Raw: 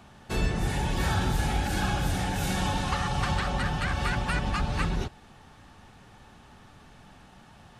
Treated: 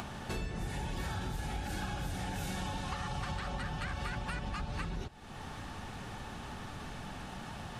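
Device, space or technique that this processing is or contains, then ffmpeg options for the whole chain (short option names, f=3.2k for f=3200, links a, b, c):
upward and downward compression: -af "acompressor=mode=upward:threshold=-31dB:ratio=2.5,acompressor=threshold=-33dB:ratio=6,volume=-1.5dB"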